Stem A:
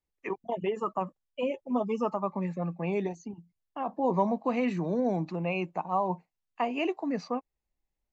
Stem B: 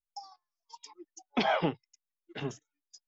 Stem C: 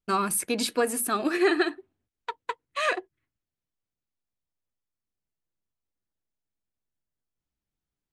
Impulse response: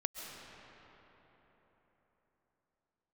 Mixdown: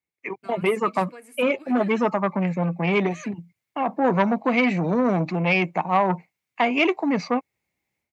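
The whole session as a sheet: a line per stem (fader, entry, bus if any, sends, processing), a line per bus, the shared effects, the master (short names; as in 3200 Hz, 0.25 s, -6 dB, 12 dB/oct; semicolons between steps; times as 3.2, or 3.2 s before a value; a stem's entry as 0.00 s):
-2.5 dB, 0.00 s, no send, low shelf 130 Hz +6 dB; AGC gain up to 12 dB
off
-19.5 dB, 0.35 s, no send, dry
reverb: off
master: HPF 100 Hz 24 dB/oct; bell 2200 Hz +14 dB 0.32 oct; core saturation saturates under 970 Hz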